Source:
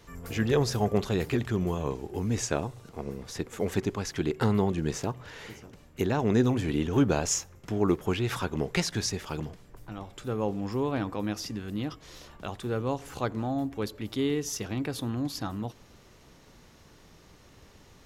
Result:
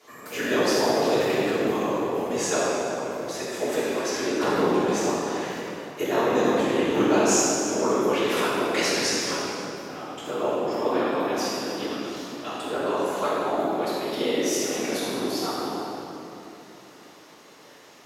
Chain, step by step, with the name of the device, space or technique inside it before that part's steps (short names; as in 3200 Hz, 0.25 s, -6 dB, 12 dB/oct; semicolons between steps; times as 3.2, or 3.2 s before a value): whispering ghost (whisperiser; HPF 400 Hz 12 dB/oct; reverb RT60 3.2 s, pre-delay 3 ms, DRR -8.5 dB)